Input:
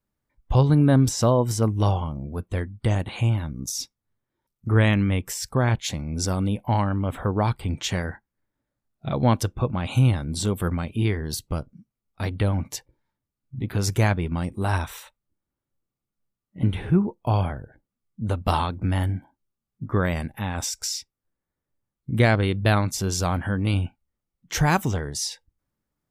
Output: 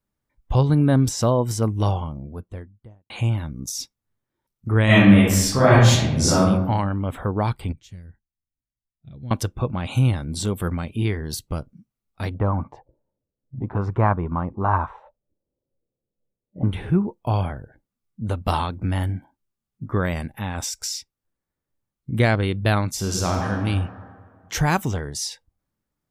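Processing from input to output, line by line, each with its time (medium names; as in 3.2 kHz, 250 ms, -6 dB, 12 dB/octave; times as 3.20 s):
1.86–3.10 s: studio fade out
4.85–6.42 s: reverb throw, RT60 0.92 s, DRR -10 dB
7.72–9.31 s: amplifier tone stack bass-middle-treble 10-0-1
12.34–16.72 s: touch-sensitive low-pass 510–1100 Hz up, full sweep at -23 dBFS
22.95–23.50 s: reverb throw, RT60 2 s, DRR 0.5 dB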